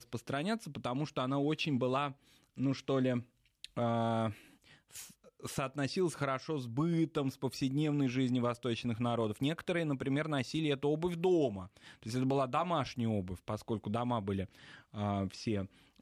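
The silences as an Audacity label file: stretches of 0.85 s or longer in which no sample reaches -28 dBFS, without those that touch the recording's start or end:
4.270000	5.460000	silence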